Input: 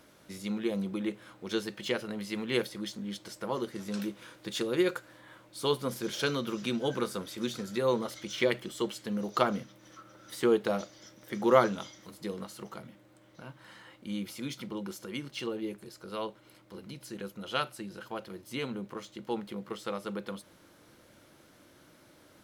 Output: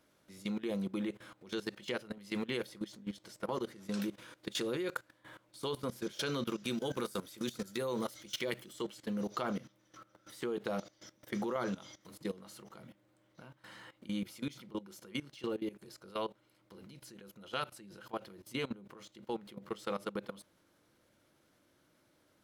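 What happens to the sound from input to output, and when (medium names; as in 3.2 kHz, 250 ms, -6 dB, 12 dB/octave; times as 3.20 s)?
6.64–8.73 s: treble shelf 8.1 kHz +12 dB
whole clip: level held to a coarse grid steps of 18 dB; trim +1 dB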